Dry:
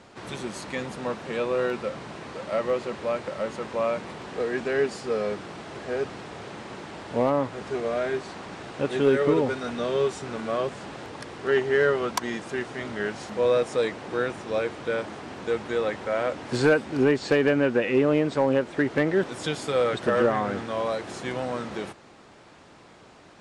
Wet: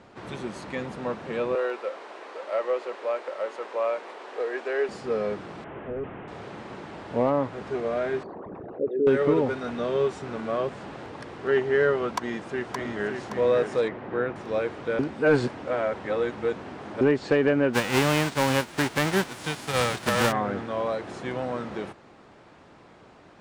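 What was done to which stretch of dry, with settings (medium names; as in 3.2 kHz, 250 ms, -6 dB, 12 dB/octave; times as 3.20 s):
1.55–4.89 s: high-pass 390 Hz 24 dB/octave
5.64–6.28 s: one-bit delta coder 16 kbps, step -45 dBFS
8.23–9.07 s: resonances exaggerated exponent 3
12.12–13.23 s: echo throw 570 ms, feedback 40%, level -5 dB
13.88–14.36 s: low-pass 2.3 kHz
14.99–17.01 s: reverse
17.73–20.31 s: formants flattened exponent 0.3
whole clip: treble shelf 3.7 kHz -10.5 dB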